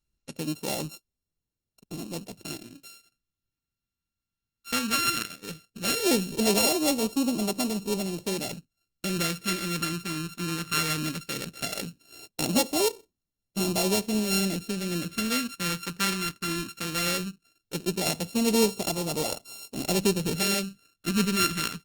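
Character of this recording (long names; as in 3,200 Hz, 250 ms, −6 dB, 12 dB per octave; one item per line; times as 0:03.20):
a buzz of ramps at a fixed pitch in blocks of 32 samples
phaser sweep stages 2, 0.17 Hz, lowest notch 680–1,500 Hz
Opus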